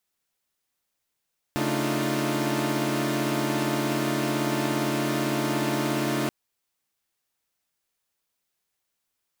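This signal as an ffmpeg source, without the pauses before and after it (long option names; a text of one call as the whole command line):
ffmpeg -f lavfi -i "aevalsrc='0.0398*((2*mod(138.59*t,1)-1)+(2*mod(220*t,1)-1)+(2*mod(293.66*t,1)-1)+(2*mod(311.13*t,1)-1)+(2*mod(349.23*t,1)-1))':duration=4.73:sample_rate=44100" out.wav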